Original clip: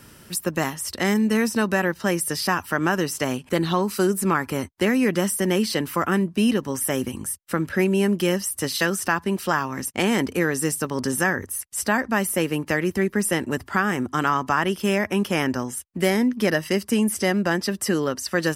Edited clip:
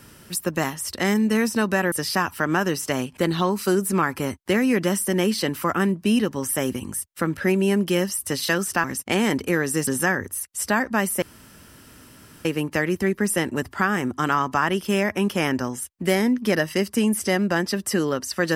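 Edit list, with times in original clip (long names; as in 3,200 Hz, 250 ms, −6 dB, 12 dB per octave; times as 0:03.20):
0:01.92–0:02.24: remove
0:09.16–0:09.72: remove
0:10.75–0:11.05: remove
0:12.40: splice in room tone 1.23 s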